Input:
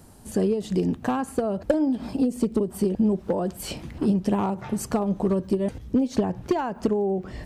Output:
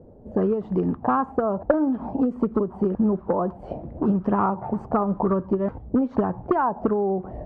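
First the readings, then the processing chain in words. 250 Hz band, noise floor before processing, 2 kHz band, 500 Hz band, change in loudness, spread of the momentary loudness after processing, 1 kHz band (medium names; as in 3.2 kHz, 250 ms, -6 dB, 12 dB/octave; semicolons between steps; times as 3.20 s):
+0.5 dB, -45 dBFS, +1.5 dB, +1.5 dB, +1.5 dB, 4 LU, +6.5 dB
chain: touch-sensitive low-pass 500–1300 Hz up, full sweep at -20 dBFS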